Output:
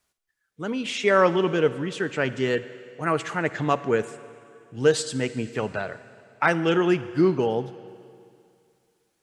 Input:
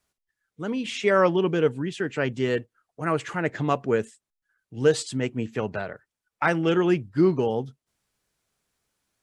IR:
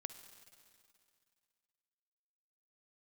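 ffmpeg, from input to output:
-filter_complex "[0:a]asplit=2[s0][s1];[1:a]atrim=start_sample=2205,lowshelf=f=370:g=-8[s2];[s1][s2]afir=irnorm=-1:irlink=0,volume=2.51[s3];[s0][s3]amix=inputs=2:normalize=0,volume=0.531"

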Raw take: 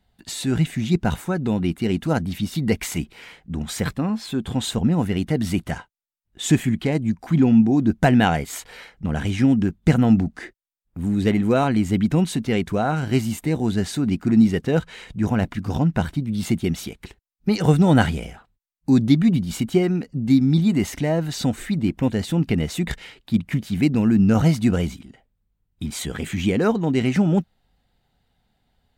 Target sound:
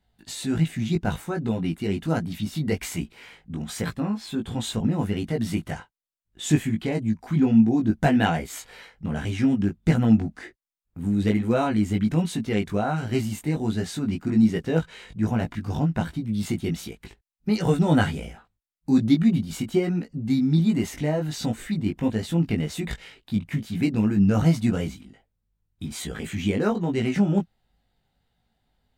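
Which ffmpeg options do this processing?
-af "flanger=delay=17.5:depth=2.5:speed=1.3,volume=0.891"

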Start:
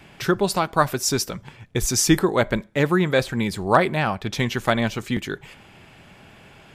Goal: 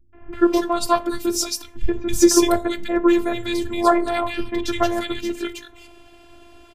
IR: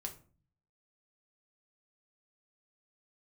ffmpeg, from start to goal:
-filter_complex "[0:a]asplit=2[s0][s1];[1:a]atrim=start_sample=2205,lowshelf=f=460:g=10[s2];[s1][s2]afir=irnorm=-1:irlink=0,volume=0.75[s3];[s0][s3]amix=inputs=2:normalize=0,afftfilt=real='hypot(re,im)*cos(PI*b)':imag='0':win_size=512:overlap=0.75,acrossover=split=180|1900[s4][s5][s6];[s5]adelay=130[s7];[s6]adelay=330[s8];[s4][s7][s8]amix=inputs=3:normalize=0"

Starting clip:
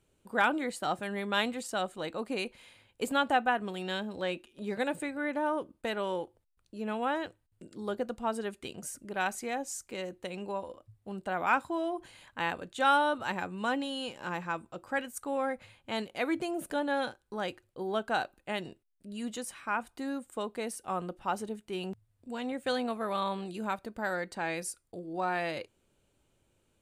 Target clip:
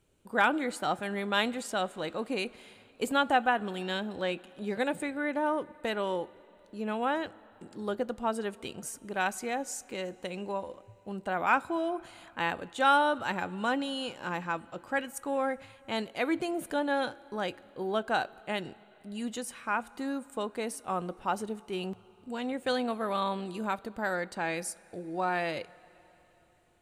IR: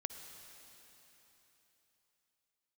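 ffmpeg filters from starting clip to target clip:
-filter_complex "[0:a]asplit=2[s0][s1];[1:a]atrim=start_sample=2205,highshelf=f=8000:g=-9.5[s2];[s1][s2]afir=irnorm=-1:irlink=0,volume=0.266[s3];[s0][s3]amix=inputs=2:normalize=0"

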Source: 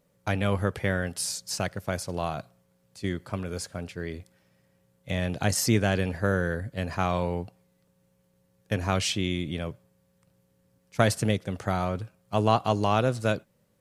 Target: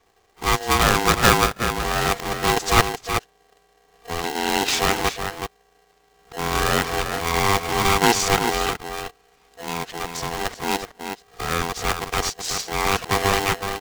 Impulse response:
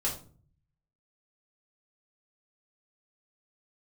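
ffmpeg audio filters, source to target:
-filter_complex "[0:a]areverse,acrossover=split=120[s0][s1];[s0]acompressor=threshold=0.00398:ratio=2.5[s2];[s2][s1]amix=inputs=2:normalize=0,aresample=16000,acrusher=bits=2:mode=log:mix=0:aa=0.000001,aresample=44100,asplit=2[s3][s4];[s4]adelay=373.2,volume=0.447,highshelf=f=4000:g=-8.4[s5];[s3][s5]amix=inputs=2:normalize=0,aeval=exprs='val(0)*sgn(sin(2*PI*590*n/s))':c=same,volume=2"

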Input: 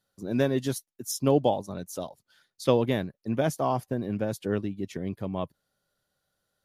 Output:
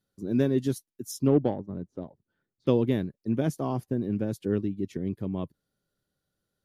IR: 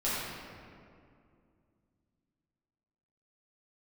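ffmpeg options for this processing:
-filter_complex "[0:a]lowshelf=f=480:t=q:w=1.5:g=7,asettb=1/sr,asplit=3[s0][s1][s2];[s0]atrim=end=1.274[s3];[s1]atrim=start=1.27:end=2.67,asetpts=PTS-STARTPTS,afade=t=in:d=0.004:c=qsin,afade=t=out:st=1.396:d=0.004:c=qsin,adynamicsmooth=sensitivity=0.5:basefreq=1100[s4];[s2]atrim=start=2.666[s5];[s3][s4]acrossfade=d=0.004:c1=hsin:c2=qsin[s6];[s6][s5]acrossfade=d=0.004:c1=qsin:c2=hsin,volume=0.501"

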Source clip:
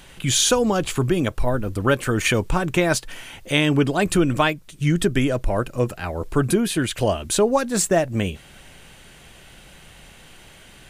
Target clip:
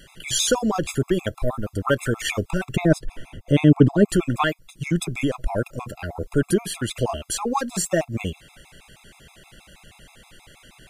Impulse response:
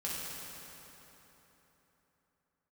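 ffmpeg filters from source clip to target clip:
-filter_complex "[0:a]asettb=1/sr,asplit=3[s0][s1][s2];[s0]atrim=end=2.764[s3];[s1]atrim=start=2.76:end=4.09,asetpts=PTS-STARTPTS,afade=t=in:d=0.004:c=qsin,afade=t=out:st=1.326:d=0.004:c=qsin,tiltshelf=f=850:g=10[s4];[s2]atrim=start=4.086[s5];[s3][s4]acrossfade=d=0.004:c1=hsin:c2=qsin[s6];[s6][s5]acrossfade=d=0.004:c1=qsin:c2=hsin,afftfilt=real='re*gt(sin(2*PI*6.3*pts/sr)*(1-2*mod(floor(b*sr/1024/680),2)),0)':imag='im*gt(sin(2*PI*6.3*pts/sr)*(1-2*mod(floor(b*sr/1024/680),2)),0)':win_size=1024:overlap=0.75"

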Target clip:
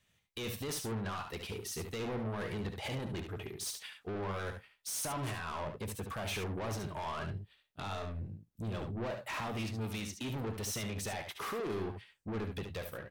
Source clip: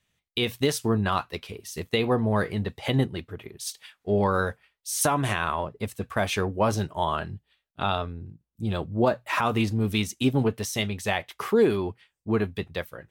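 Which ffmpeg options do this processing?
-filter_complex "[0:a]asettb=1/sr,asplit=3[s0][s1][s2];[s0]atrim=end=9.104[s3];[s1]atrim=start=9.1:end=10.3,asetpts=PTS-STARTPTS,afade=t=in:d=0.004:c=qsin,afade=t=out:st=1.196:d=0.004:c=qsin,acrossover=split=610|5900[s4][s5][s6];[s4]acompressor=threshold=0.02:ratio=4[s7];[s5]acompressor=threshold=0.0224:ratio=4[s8];[s6]acompressor=threshold=0.00178:ratio=4[s9];[s7][s8][s9]amix=inputs=3:normalize=0[s10];[s2]atrim=start=10.296[s11];[s3][s10]acrossfade=d=0.004:c1=hsin:c2=qsin[s12];[s12][s11]acrossfade=d=0.004:c1=qsin:c2=hsin,alimiter=limit=0.075:level=0:latency=1:release=32,asoftclip=type=tanh:threshold=0.0168,asplit=2[s13][s14];[s14]aecho=0:1:62|72:0.178|0.422[s15];[s13][s15]amix=inputs=2:normalize=0"

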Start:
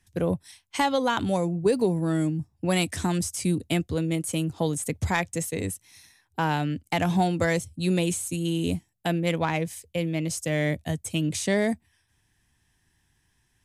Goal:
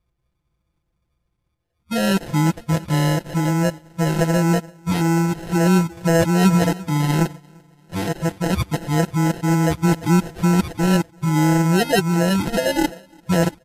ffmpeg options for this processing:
-af "areverse,equalizer=f=68:t=o:w=0.82:g=12.5,aecho=1:1:343|686|1029|1372:0.106|0.0572|0.0309|0.0167,agate=range=0.316:threshold=0.0178:ratio=16:detection=peak,tiltshelf=f=1100:g=4.5,bandreject=f=1600:w=14,acrusher=samples=38:mix=1:aa=0.000001,aecho=1:1:5.9:0.79" -ar 32000 -c:a libmp3lame -b:a 64k

